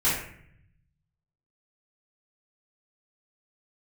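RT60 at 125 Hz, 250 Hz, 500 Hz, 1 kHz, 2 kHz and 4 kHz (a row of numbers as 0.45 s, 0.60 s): 1.6 s, 1.0 s, 0.65 s, 0.60 s, 0.70 s, 0.45 s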